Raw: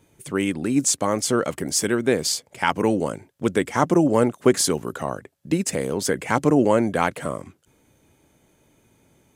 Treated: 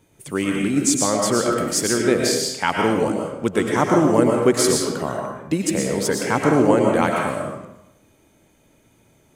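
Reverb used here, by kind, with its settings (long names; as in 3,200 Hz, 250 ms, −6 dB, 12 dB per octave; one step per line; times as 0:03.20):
comb and all-pass reverb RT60 0.85 s, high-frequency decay 0.85×, pre-delay 75 ms, DRR 0 dB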